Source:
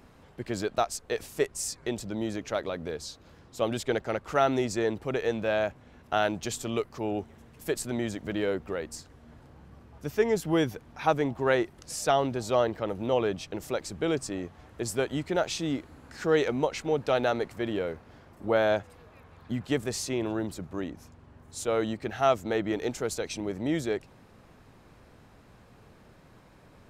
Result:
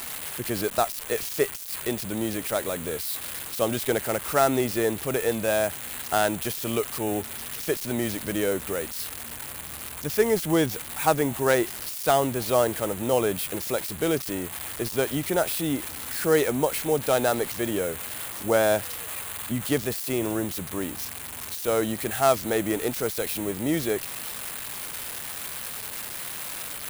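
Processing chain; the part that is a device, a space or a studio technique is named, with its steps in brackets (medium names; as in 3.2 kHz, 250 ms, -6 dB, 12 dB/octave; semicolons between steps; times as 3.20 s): budget class-D amplifier (dead-time distortion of 0.094 ms; zero-crossing glitches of -20 dBFS); trim +3 dB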